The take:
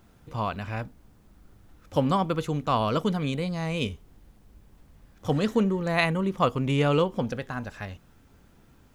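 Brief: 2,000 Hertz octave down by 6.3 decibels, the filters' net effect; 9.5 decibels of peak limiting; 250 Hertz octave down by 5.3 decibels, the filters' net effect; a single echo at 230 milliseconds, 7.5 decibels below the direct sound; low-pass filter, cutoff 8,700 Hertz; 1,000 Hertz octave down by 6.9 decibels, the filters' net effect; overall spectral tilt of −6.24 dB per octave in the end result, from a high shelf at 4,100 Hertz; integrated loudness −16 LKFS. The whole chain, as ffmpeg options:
ffmpeg -i in.wav -af "lowpass=8700,equalizer=frequency=250:width_type=o:gain=-7.5,equalizer=frequency=1000:width_type=o:gain=-7,equalizer=frequency=2000:width_type=o:gain=-4.5,highshelf=frequency=4100:gain=-5.5,alimiter=limit=-23.5dB:level=0:latency=1,aecho=1:1:230:0.422,volume=18dB" out.wav

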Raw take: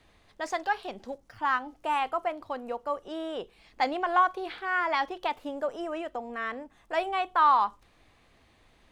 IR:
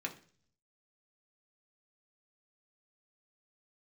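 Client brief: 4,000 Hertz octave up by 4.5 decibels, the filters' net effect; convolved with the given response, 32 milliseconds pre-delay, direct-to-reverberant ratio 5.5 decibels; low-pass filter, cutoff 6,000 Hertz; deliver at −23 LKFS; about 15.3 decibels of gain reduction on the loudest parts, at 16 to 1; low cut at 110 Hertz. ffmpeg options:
-filter_complex "[0:a]highpass=110,lowpass=6000,equalizer=frequency=4000:width_type=o:gain=6.5,acompressor=threshold=-32dB:ratio=16,asplit=2[link_01][link_02];[1:a]atrim=start_sample=2205,adelay=32[link_03];[link_02][link_03]afir=irnorm=-1:irlink=0,volume=-7dB[link_04];[link_01][link_04]amix=inputs=2:normalize=0,volume=14dB"

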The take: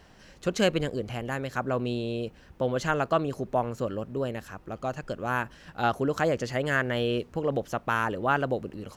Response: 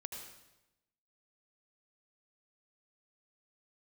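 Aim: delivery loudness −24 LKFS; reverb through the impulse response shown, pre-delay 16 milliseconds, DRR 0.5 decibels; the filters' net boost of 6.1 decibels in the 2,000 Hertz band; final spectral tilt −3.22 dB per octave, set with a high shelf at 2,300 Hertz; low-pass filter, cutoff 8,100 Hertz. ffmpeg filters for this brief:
-filter_complex "[0:a]lowpass=8100,equalizer=frequency=2000:width_type=o:gain=6,highshelf=frequency=2300:gain=5,asplit=2[link_01][link_02];[1:a]atrim=start_sample=2205,adelay=16[link_03];[link_02][link_03]afir=irnorm=-1:irlink=0,volume=1.5dB[link_04];[link_01][link_04]amix=inputs=2:normalize=0"

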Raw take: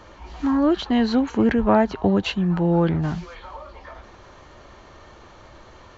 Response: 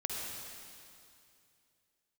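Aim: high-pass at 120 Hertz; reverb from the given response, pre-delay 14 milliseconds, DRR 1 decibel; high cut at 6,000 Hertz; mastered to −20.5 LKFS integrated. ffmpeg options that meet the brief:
-filter_complex "[0:a]highpass=120,lowpass=6000,asplit=2[link_01][link_02];[1:a]atrim=start_sample=2205,adelay=14[link_03];[link_02][link_03]afir=irnorm=-1:irlink=0,volume=-4dB[link_04];[link_01][link_04]amix=inputs=2:normalize=0,volume=-2dB"

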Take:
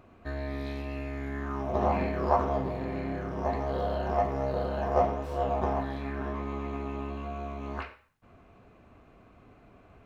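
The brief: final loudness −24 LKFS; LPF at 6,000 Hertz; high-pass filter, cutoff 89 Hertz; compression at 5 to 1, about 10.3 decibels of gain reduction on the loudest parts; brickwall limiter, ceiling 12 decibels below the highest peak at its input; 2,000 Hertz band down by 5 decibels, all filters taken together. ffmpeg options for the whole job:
ffmpeg -i in.wav -af "highpass=89,lowpass=6000,equalizer=frequency=2000:width_type=o:gain=-6.5,acompressor=threshold=-31dB:ratio=5,volume=16dB,alimiter=limit=-15dB:level=0:latency=1" out.wav

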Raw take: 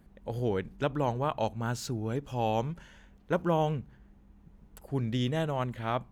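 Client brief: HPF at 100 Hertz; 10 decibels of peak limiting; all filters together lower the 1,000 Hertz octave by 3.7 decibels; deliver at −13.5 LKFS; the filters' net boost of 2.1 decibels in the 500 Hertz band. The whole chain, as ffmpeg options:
ffmpeg -i in.wav -af "highpass=100,equalizer=frequency=500:width_type=o:gain=4.5,equalizer=frequency=1000:width_type=o:gain=-7,volume=23dB,alimiter=limit=-2dB:level=0:latency=1" out.wav

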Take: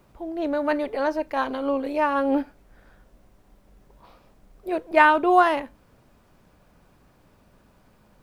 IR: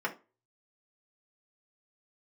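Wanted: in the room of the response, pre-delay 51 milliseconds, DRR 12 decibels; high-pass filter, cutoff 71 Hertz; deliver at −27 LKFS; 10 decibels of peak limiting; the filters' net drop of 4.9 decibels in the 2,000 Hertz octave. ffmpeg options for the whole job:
-filter_complex "[0:a]highpass=71,equalizer=frequency=2000:width_type=o:gain=-7,alimiter=limit=-15dB:level=0:latency=1,asplit=2[link_01][link_02];[1:a]atrim=start_sample=2205,adelay=51[link_03];[link_02][link_03]afir=irnorm=-1:irlink=0,volume=-19dB[link_04];[link_01][link_04]amix=inputs=2:normalize=0,volume=-1dB"

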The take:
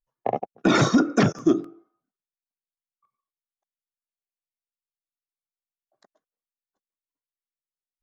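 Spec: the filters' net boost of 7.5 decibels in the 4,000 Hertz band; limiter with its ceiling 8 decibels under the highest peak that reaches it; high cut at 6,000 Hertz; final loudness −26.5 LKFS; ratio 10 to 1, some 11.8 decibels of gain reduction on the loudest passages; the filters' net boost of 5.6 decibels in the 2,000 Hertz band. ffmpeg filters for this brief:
ffmpeg -i in.wav -af "lowpass=6000,equalizer=frequency=2000:width_type=o:gain=6,equalizer=frequency=4000:width_type=o:gain=8,acompressor=threshold=-25dB:ratio=10,volume=6.5dB,alimiter=limit=-13dB:level=0:latency=1" out.wav

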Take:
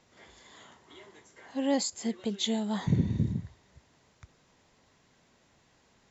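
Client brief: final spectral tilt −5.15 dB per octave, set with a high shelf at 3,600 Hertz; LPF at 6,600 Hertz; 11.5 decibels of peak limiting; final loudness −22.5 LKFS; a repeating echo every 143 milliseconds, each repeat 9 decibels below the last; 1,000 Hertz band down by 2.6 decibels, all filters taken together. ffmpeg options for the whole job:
ffmpeg -i in.wav -af "lowpass=6600,equalizer=frequency=1000:width_type=o:gain=-3.5,highshelf=frequency=3600:gain=3,alimiter=level_in=2dB:limit=-24dB:level=0:latency=1,volume=-2dB,aecho=1:1:143|286|429|572:0.355|0.124|0.0435|0.0152,volume=12.5dB" out.wav

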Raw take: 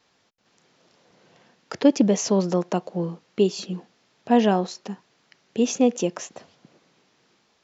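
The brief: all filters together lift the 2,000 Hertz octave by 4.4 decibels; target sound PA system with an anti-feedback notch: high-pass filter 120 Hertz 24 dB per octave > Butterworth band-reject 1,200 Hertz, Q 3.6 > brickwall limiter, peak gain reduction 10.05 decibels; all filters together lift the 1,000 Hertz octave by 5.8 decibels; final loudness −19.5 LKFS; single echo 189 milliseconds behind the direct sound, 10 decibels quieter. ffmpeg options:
ffmpeg -i in.wav -af "highpass=frequency=120:width=0.5412,highpass=frequency=120:width=1.3066,asuperstop=centerf=1200:order=8:qfactor=3.6,equalizer=frequency=1000:width_type=o:gain=8.5,equalizer=frequency=2000:width_type=o:gain=3,aecho=1:1:189:0.316,volume=6.5dB,alimiter=limit=-6.5dB:level=0:latency=1" out.wav

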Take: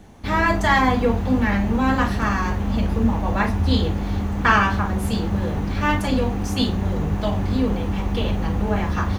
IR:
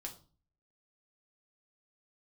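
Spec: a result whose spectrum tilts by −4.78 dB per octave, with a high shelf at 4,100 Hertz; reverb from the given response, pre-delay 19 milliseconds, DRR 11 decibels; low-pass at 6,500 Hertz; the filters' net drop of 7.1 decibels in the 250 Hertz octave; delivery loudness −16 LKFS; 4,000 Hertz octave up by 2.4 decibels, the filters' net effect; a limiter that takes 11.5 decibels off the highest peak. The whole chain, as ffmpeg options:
-filter_complex "[0:a]lowpass=6500,equalizer=frequency=250:width_type=o:gain=-9,equalizer=frequency=4000:width_type=o:gain=7.5,highshelf=frequency=4100:gain=-7.5,alimiter=limit=-16.5dB:level=0:latency=1,asplit=2[link_01][link_02];[1:a]atrim=start_sample=2205,adelay=19[link_03];[link_02][link_03]afir=irnorm=-1:irlink=0,volume=-8dB[link_04];[link_01][link_04]amix=inputs=2:normalize=0,volume=10dB"

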